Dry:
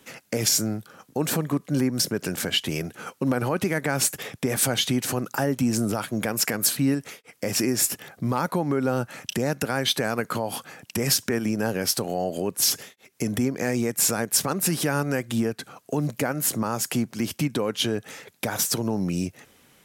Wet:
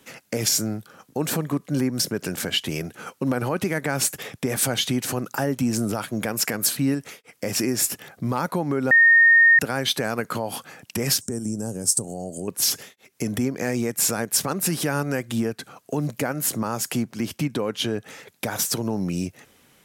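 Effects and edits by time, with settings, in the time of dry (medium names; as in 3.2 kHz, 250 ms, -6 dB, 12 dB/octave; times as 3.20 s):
8.91–9.59 s: bleep 1.84 kHz -10.5 dBFS
11.21–12.48 s: FFT filter 130 Hz 0 dB, 310 Hz -4 dB, 810 Hz -10 dB, 2.3 kHz -23 dB, 4.2 kHz -13 dB, 8.4 kHz +14 dB, 12 kHz -6 dB
17.03–18.19 s: treble shelf 4.6 kHz -4 dB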